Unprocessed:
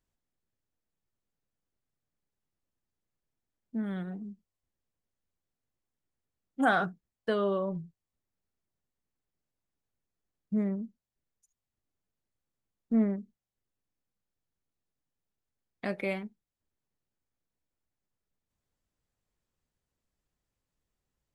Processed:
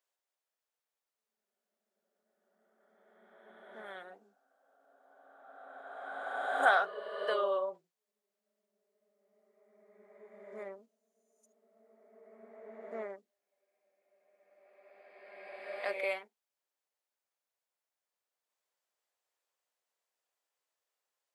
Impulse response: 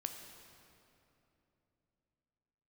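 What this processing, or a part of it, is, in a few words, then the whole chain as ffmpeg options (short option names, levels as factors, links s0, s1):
ghost voice: -filter_complex "[0:a]areverse[s0];[1:a]atrim=start_sample=2205[s1];[s0][s1]afir=irnorm=-1:irlink=0,areverse,highpass=f=510:w=0.5412,highpass=f=510:w=1.3066,volume=1.33"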